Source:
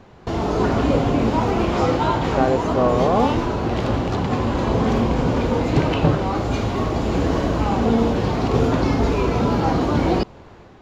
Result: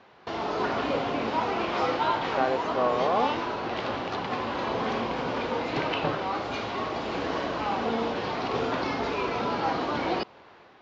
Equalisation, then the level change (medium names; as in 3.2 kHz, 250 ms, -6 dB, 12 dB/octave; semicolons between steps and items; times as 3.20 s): high-pass 1.1 kHz 6 dB/octave; low-pass 5.8 kHz 24 dB/octave; distance through air 80 m; 0.0 dB